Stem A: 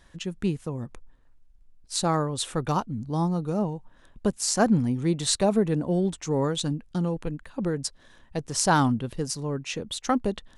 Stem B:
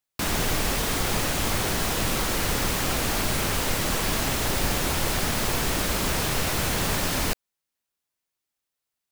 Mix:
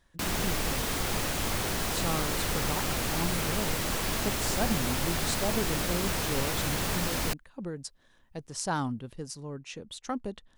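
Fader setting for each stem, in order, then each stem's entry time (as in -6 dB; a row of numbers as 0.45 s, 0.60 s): -9.5 dB, -5.0 dB; 0.00 s, 0.00 s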